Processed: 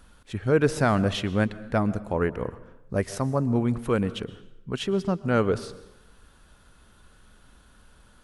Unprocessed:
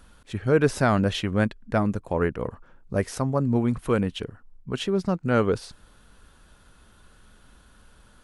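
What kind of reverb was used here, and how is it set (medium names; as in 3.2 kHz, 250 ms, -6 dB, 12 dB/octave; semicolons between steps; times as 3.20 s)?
plate-style reverb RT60 0.86 s, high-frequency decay 0.85×, pre-delay 105 ms, DRR 16.5 dB; trim -1 dB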